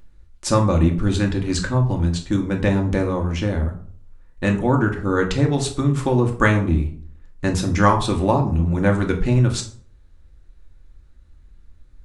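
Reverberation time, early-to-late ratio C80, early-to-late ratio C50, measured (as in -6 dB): 0.55 s, 15.0 dB, 11.0 dB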